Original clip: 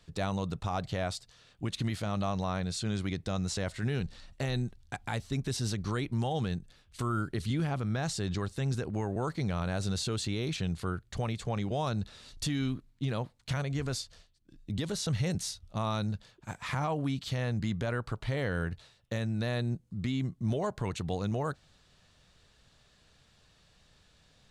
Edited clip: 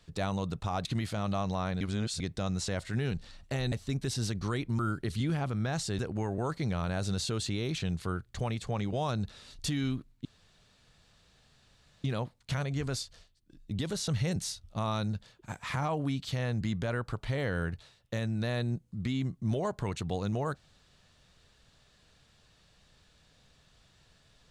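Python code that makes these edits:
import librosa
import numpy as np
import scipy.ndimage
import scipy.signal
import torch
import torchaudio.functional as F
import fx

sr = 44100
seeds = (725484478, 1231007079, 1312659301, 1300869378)

y = fx.edit(x, sr, fx.cut(start_s=0.85, length_s=0.89),
    fx.reverse_span(start_s=2.7, length_s=0.39),
    fx.cut(start_s=4.61, length_s=0.54),
    fx.cut(start_s=6.22, length_s=0.87),
    fx.cut(start_s=8.29, length_s=0.48),
    fx.insert_room_tone(at_s=13.03, length_s=1.79), tone=tone)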